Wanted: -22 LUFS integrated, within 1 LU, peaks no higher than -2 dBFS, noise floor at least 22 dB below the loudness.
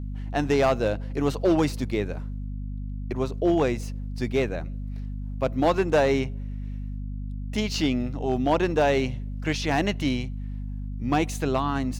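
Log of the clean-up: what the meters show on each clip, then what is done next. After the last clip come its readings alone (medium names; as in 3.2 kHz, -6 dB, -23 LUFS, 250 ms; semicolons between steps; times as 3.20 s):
clipped samples 0.5%; clipping level -14.5 dBFS; hum 50 Hz; highest harmonic 250 Hz; hum level -30 dBFS; loudness -26.5 LUFS; peak level -14.5 dBFS; loudness target -22.0 LUFS
-> clip repair -14.5 dBFS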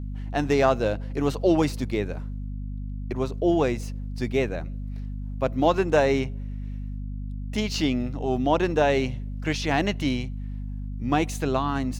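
clipped samples 0.0%; hum 50 Hz; highest harmonic 250 Hz; hum level -30 dBFS
-> de-hum 50 Hz, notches 5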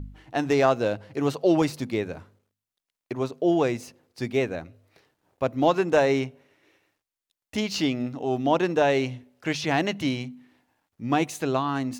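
hum not found; loudness -25.5 LUFS; peak level -7.0 dBFS; loudness target -22.0 LUFS
-> trim +3.5 dB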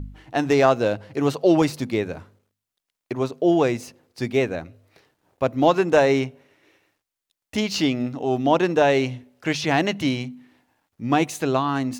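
loudness -22.0 LUFS; peak level -3.5 dBFS; noise floor -86 dBFS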